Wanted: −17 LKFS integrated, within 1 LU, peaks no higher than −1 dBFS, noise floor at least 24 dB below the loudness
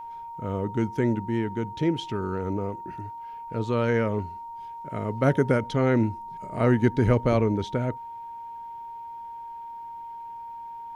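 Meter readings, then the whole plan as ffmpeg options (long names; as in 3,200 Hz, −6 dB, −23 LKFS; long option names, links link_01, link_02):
interfering tone 930 Hz; level of the tone −36 dBFS; integrated loudness −26.0 LKFS; sample peak −8.5 dBFS; target loudness −17.0 LKFS
→ -af "bandreject=frequency=930:width=30"
-af "volume=9dB,alimiter=limit=-1dB:level=0:latency=1"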